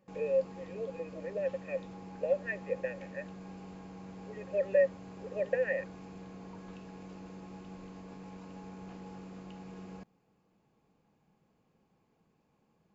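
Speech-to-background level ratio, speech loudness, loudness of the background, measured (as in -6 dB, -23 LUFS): 13.5 dB, -34.5 LUFS, -48.0 LUFS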